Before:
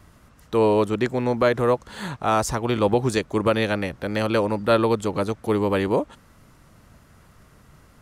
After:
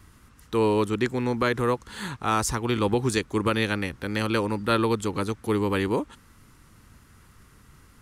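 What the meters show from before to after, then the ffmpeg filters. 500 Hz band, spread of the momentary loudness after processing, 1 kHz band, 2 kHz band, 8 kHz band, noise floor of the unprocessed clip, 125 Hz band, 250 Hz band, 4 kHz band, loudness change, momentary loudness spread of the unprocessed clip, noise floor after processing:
-5.5 dB, 6 LU, -3.0 dB, -0.5 dB, +1.5 dB, -54 dBFS, -1.5 dB, -2.0 dB, 0.0 dB, -3.5 dB, 7 LU, -55 dBFS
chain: -af "equalizer=f=160:t=o:w=0.67:g=-4,equalizer=f=630:t=o:w=0.67:g=-12,equalizer=f=10k:t=o:w=0.67:g=3"

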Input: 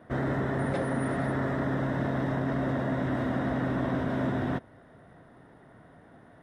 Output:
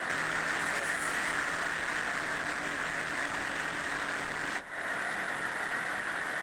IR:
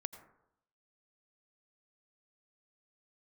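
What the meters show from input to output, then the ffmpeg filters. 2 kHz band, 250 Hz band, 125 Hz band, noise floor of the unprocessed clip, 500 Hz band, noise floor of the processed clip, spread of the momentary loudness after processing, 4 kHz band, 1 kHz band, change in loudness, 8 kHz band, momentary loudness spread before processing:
+9.0 dB, -15.0 dB, -19.5 dB, -55 dBFS, -8.5 dB, -37 dBFS, 3 LU, +10.0 dB, +0.5 dB, -2.5 dB, n/a, 0 LU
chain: -filter_complex "[0:a]aeval=exprs='clip(val(0),-1,0.01)':c=same,highshelf=f=3.6k:g=4.5,acompressor=threshold=-44dB:ratio=10,asplit=2[a][b];[b]highpass=f=720:p=1,volume=25dB,asoftclip=type=tanh:threshold=-35.5dB[c];[a][c]amix=inputs=2:normalize=0,lowpass=f=3.4k:p=1,volume=-6dB,crystalizer=i=2.5:c=0,lowpass=f=7.9k:t=q:w=4.1,afreqshift=27,aeval=exprs='0.0355*(cos(1*acos(clip(val(0)/0.0355,-1,1)))-cos(1*PI/2))+0.002*(cos(7*acos(clip(val(0)/0.0355,-1,1)))-cos(7*PI/2))':c=same,equalizer=f=1.7k:w=1.1:g=12.5,flanger=delay=20:depth=6.4:speed=1.5,asplit=4[d][e][f][g];[e]adelay=196,afreqshift=-100,volume=-18dB[h];[f]adelay=392,afreqshift=-200,volume=-26.2dB[i];[g]adelay=588,afreqshift=-300,volume=-34.4dB[j];[d][h][i][j]amix=inputs=4:normalize=0,volume=7.5dB" -ar 48000 -c:a libopus -b:a 20k

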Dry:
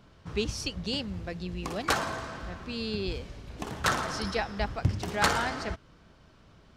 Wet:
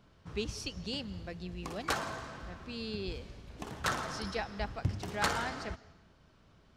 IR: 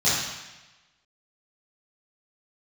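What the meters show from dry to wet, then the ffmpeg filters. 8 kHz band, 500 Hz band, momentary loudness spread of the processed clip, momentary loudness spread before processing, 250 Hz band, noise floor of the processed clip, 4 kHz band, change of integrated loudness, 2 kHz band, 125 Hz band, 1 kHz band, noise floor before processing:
-6.0 dB, -6.0 dB, 12 LU, 12 LU, -6.0 dB, -64 dBFS, -6.0 dB, -6.0 dB, -6.0 dB, -6.0 dB, -6.0 dB, -58 dBFS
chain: -filter_complex "[0:a]asplit=2[a][b];[1:a]atrim=start_sample=2205,afade=t=out:st=0.33:d=0.01,atrim=end_sample=14994,adelay=133[c];[b][c]afir=irnorm=-1:irlink=0,volume=-35.5dB[d];[a][d]amix=inputs=2:normalize=0,volume=-6dB"

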